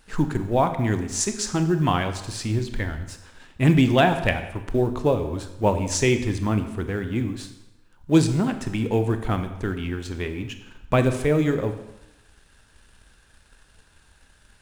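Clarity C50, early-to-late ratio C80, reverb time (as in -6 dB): 10.0 dB, 12.0 dB, 0.95 s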